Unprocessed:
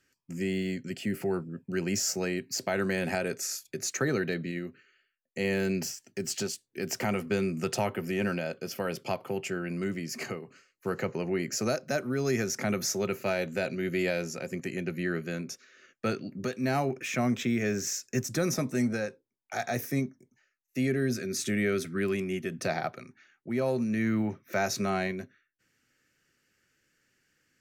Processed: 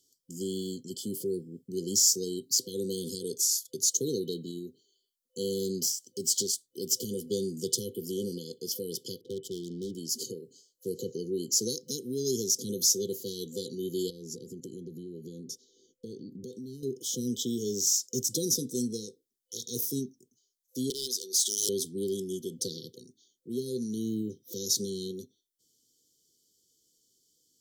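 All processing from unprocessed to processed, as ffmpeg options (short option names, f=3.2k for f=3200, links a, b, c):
-filter_complex "[0:a]asettb=1/sr,asplit=3[a][b][c];[a]atrim=end=9.214[d];[b]atrim=start=9.21:end=9.95,asetpts=PTS-STARTPTS,afade=t=in:d=0.004:c=qsin,afade=t=out:st=0.736:d=0.004:c=qsin,adynamicsmooth=sensitivity=7.5:basefreq=710,aeval=exprs='0.0473*(abs(mod(val(0)/0.0473+3,4)-2)-1)':c=same[e];[c]atrim=start=9.946[f];[d][e]acrossfade=d=0.004:c1=hsin:c2=qsin[g];[g][f]acrossfade=d=0.004:c1=qsin:c2=hsin,asettb=1/sr,asplit=3[h][i][j];[h]atrim=end=14.104[k];[i]atrim=start=14.1:end=16.83,asetpts=PTS-STARTPTS,afade=t=in:d=0.004:c=qsin,afade=t=out:st=2.726:d=0.004:c=qsin,tiltshelf=f=680:g=7,acompressor=threshold=-34dB:ratio=12:attack=3.2:release=140:knee=1:detection=peak[l];[j]atrim=start=16.826[m];[k][l]acrossfade=d=0.004:c1=hsin:c2=qsin[n];[n][m]acrossfade=d=0.004:c1=qsin:c2=hsin,asettb=1/sr,asplit=3[o][p][q];[o]atrim=end=20.904[r];[p]atrim=start=20.9:end=21.69,asetpts=PTS-STARTPTS,afade=t=in:d=0.004:c=qsin,afade=t=out:st=0.786:d=0.004:c=qsin,highpass=710,equalizer=f=1.3k:t=o:w=2:g=13.5,aeval=exprs='0.0562*(abs(mod(val(0)/0.0562+3,4)-2)-1)':c=same[s];[q]atrim=start=21.686[t];[r][s]acrossfade=d=0.004:c1=hsin:c2=qsin[u];[u][t]acrossfade=d=0.004:c1=qsin:c2=hsin,afftfilt=real='re*(1-between(b*sr/4096,510,3000))':imag='im*(1-between(b*sr/4096,510,3000))':win_size=4096:overlap=0.75,bass=f=250:g=-8,treble=f=4k:g=9"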